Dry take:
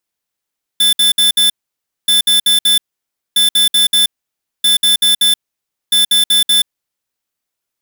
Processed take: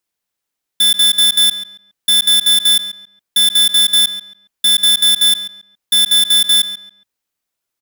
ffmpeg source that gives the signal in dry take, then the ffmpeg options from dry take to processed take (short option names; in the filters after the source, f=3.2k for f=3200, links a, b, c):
-f lavfi -i "aevalsrc='0.299*(2*lt(mod(3520*t,1),0.5)-1)*clip(min(mod(mod(t,1.28),0.19),0.13-mod(mod(t,1.28),0.19))/0.005,0,1)*lt(mod(t,1.28),0.76)':d=6.4:s=44100"
-filter_complex "[0:a]asplit=2[a][b];[b]adelay=138,lowpass=f=3.1k:p=1,volume=-9.5dB,asplit=2[c][d];[d]adelay=138,lowpass=f=3.1k:p=1,volume=0.31,asplit=2[e][f];[f]adelay=138,lowpass=f=3.1k:p=1,volume=0.31[g];[a][c][e][g]amix=inputs=4:normalize=0"